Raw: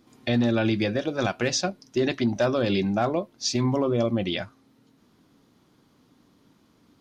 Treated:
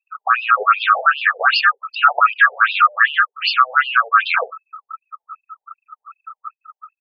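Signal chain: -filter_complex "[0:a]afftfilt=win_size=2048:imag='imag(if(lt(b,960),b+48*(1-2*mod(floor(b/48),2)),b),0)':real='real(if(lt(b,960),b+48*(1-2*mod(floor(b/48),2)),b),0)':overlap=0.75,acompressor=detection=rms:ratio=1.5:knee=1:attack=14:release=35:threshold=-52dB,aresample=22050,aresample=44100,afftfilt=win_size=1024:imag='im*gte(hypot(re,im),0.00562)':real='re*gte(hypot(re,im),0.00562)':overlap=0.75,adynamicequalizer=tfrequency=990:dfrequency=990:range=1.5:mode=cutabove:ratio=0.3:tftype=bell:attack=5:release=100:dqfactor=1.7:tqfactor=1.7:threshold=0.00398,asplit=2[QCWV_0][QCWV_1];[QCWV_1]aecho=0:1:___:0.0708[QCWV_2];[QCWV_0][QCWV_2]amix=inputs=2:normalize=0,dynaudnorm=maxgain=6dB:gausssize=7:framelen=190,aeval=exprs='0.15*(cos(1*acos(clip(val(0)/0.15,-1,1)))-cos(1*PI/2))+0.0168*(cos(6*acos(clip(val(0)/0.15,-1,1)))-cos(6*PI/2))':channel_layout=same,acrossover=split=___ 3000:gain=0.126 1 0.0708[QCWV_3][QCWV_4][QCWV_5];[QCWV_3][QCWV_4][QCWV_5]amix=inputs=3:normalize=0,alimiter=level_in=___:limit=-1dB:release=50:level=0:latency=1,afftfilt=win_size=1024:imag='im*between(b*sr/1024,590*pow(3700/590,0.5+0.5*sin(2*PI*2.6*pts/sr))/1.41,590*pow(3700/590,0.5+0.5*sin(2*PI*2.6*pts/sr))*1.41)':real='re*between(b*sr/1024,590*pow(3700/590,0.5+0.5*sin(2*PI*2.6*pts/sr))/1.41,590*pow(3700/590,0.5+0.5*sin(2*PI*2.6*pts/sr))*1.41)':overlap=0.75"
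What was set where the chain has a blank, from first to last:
71, 200, 27.5dB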